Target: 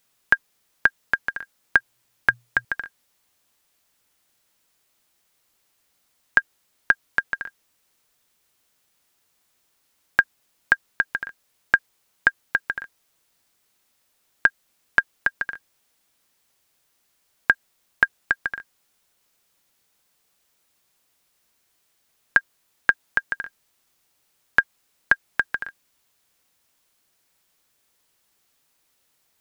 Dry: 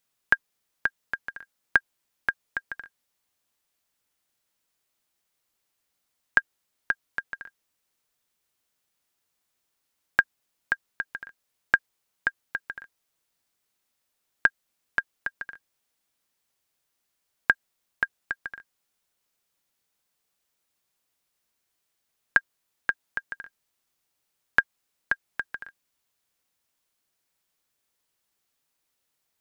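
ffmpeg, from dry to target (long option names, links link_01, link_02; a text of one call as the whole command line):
ffmpeg -i in.wav -filter_complex "[0:a]asettb=1/sr,asplit=3[link_01][link_02][link_03];[link_01]atrim=end=1.764[link_04];[link_02]atrim=start=1.76:end=2.65,asetpts=PTS-STARTPTS,afade=type=in:duration=0.004:curve=qsin,afade=type=out:start_time=0.886:duration=0.004:curve=qsin,equalizer=frequency=120:width_type=o:width=0.2:gain=14.5[link_05];[link_03]atrim=start=2.646[link_06];[link_04][link_05]acrossfade=duration=0.004:curve1=hsin:curve2=qsin[link_07];[link_07][link_06]acrossfade=duration=0.004:curve1=qsin:curve2=hsin,alimiter=level_in=10.5dB:limit=-1dB:release=50:level=0:latency=1,volume=-1dB" out.wav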